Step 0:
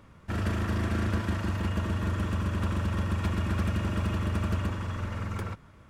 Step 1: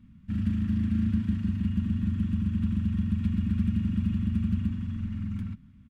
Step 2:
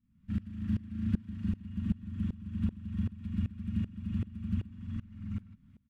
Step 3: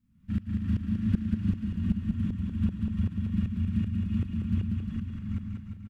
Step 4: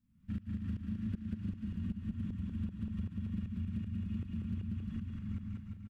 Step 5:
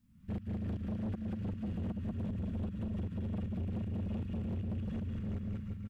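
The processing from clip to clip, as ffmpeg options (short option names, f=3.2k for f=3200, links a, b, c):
-af "firequalizer=gain_entry='entry(140,0);entry(230,9);entry(390,-28);entry(1700,-14);entry(2900,-9);entry(5400,-16)':delay=0.05:min_phase=1"
-af "aeval=exprs='val(0)*pow(10,-24*if(lt(mod(-2.6*n/s,1),2*abs(-2.6)/1000),1-mod(-2.6*n/s,1)/(2*abs(-2.6)/1000),(mod(-2.6*n/s,1)-2*abs(-2.6)/1000)/(1-2*abs(-2.6)/1000))/20)':c=same"
-af "aecho=1:1:190|351.5|488.8|605.5|704.6:0.631|0.398|0.251|0.158|0.1,volume=3.5dB"
-af "acompressor=threshold=-29dB:ratio=6,volume=-5dB"
-af "asoftclip=type=tanh:threshold=-39.5dB,volume=6.5dB"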